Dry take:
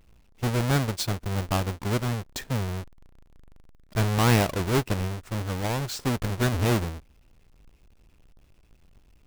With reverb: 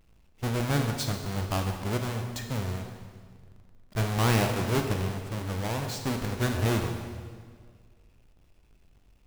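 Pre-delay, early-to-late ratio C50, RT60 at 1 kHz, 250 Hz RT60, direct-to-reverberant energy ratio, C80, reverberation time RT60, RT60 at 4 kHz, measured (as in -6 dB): 19 ms, 5.5 dB, 1.8 s, 1.9 s, 3.5 dB, 6.5 dB, 1.8 s, 1.6 s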